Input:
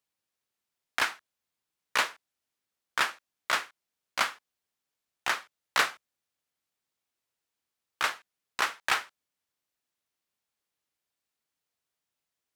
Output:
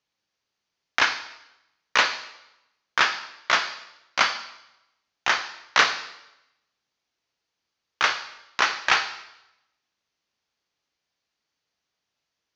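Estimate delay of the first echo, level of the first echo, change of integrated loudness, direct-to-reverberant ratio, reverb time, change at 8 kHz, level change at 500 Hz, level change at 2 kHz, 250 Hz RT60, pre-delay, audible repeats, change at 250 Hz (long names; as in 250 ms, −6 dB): no echo audible, no echo audible, +6.5 dB, 8.0 dB, 0.90 s, +4.0 dB, +6.5 dB, +7.5 dB, 0.90 s, 7 ms, no echo audible, +6.5 dB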